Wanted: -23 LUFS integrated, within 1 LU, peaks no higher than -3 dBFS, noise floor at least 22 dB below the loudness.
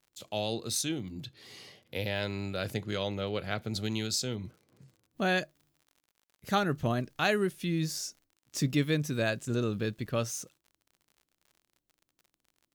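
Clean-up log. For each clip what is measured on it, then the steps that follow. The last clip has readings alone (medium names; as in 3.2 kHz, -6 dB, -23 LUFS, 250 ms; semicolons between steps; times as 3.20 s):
tick rate 40 per s; loudness -32.0 LUFS; peak level -14.0 dBFS; loudness target -23.0 LUFS
-> de-click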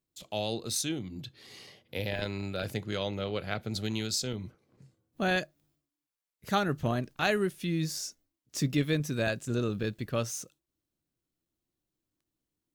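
tick rate 0.55 per s; loudness -32.5 LUFS; peak level -14.0 dBFS; loudness target -23.0 LUFS
-> trim +9.5 dB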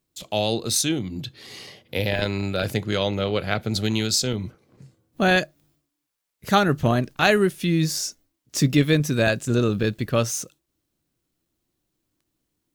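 loudness -23.0 LUFS; peak level -4.5 dBFS; noise floor -79 dBFS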